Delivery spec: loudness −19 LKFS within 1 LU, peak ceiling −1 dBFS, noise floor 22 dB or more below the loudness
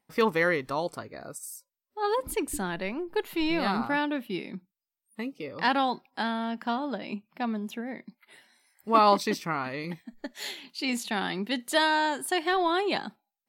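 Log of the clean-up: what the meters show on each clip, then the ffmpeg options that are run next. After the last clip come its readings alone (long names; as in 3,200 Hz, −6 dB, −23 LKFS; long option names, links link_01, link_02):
integrated loudness −28.5 LKFS; sample peak −8.5 dBFS; target loudness −19.0 LKFS
→ -af "volume=9.5dB,alimiter=limit=-1dB:level=0:latency=1"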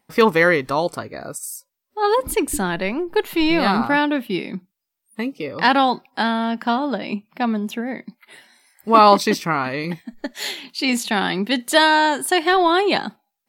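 integrated loudness −19.5 LKFS; sample peak −1.0 dBFS; background noise floor −79 dBFS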